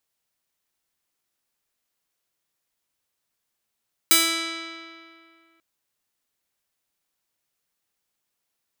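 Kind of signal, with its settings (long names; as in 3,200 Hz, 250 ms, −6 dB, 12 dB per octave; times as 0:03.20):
Karplus-Strong string E4, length 1.49 s, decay 2.31 s, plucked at 0.38, bright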